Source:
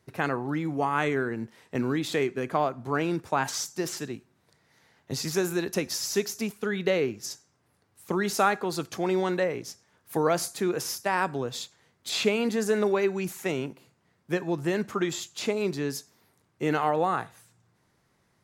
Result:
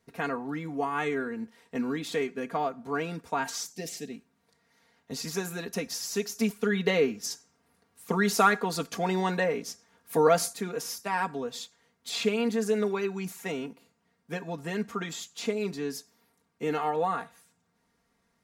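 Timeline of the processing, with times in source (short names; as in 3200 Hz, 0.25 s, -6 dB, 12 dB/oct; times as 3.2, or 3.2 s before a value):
3.72–4.12 band shelf 1200 Hz -15 dB 1 oct
6.39–10.53 gain +5 dB
whole clip: comb 4.3 ms, depth 79%; gain -5.5 dB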